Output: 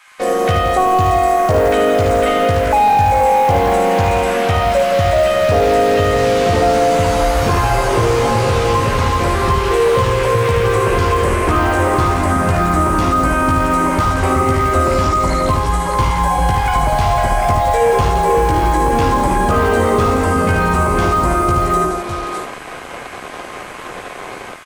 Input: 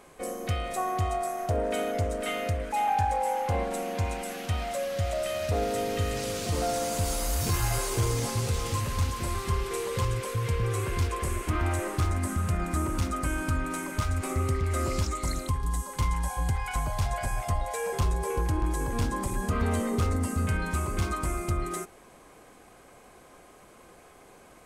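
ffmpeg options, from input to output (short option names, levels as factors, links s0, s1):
-filter_complex "[0:a]dynaudnorm=f=180:g=3:m=2.82,asplit=2[s0][s1];[s1]aecho=0:1:53|54|75|168|605:0.376|0.15|0.562|0.335|0.224[s2];[s0][s2]amix=inputs=2:normalize=0,asplit=2[s3][s4];[s4]highpass=f=720:p=1,volume=5.01,asoftclip=type=tanh:threshold=0.531[s5];[s3][s5]amix=inputs=2:normalize=0,lowpass=f=1600:p=1,volume=0.501,acrossover=split=1300[s6][s7];[s6]acrusher=bits=5:mix=0:aa=0.5[s8];[s7]asplit=2[s9][s10];[s10]adelay=16,volume=0.794[s11];[s9][s11]amix=inputs=2:normalize=0[s12];[s8][s12]amix=inputs=2:normalize=0,acrossover=split=510|1100|3700[s13][s14][s15][s16];[s13]acompressor=threshold=0.0708:ratio=4[s17];[s14]acompressor=threshold=0.0501:ratio=4[s18];[s15]acompressor=threshold=0.0178:ratio=4[s19];[s16]acompressor=threshold=0.00708:ratio=4[s20];[s17][s18][s19][s20]amix=inputs=4:normalize=0,volume=2.66"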